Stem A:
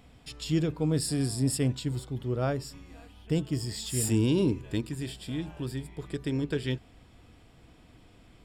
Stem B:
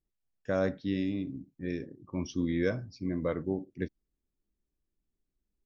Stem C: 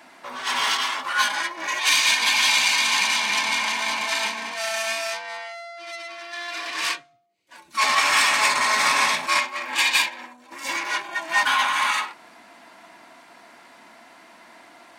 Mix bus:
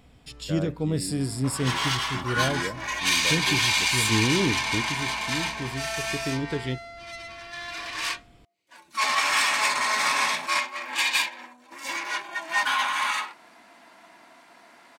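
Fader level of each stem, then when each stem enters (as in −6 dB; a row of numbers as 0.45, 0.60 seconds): +0.5, −5.5, −4.0 decibels; 0.00, 0.00, 1.20 seconds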